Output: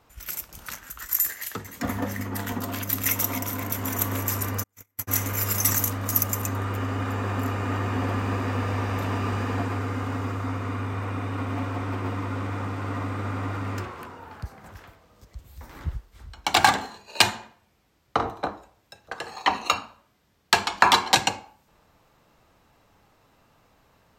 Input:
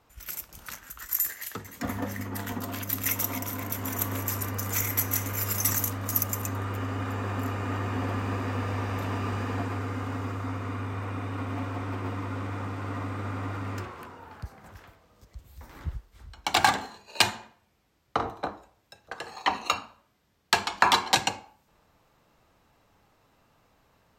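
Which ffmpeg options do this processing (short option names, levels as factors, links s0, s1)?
-filter_complex "[0:a]asplit=3[s0][s1][s2];[s0]afade=t=out:st=4.62:d=0.02[s3];[s1]agate=range=0.00355:threshold=0.0794:ratio=16:detection=peak,afade=t=in:st=4.62:d=0.02,afade=t=out:st=5.07:d=0.02[s4];[s2]afade=t=in:st=5.07:d=0.02[s5];[s3][s4][s5]amix=inputs=3:normalize=0,volume=1.5"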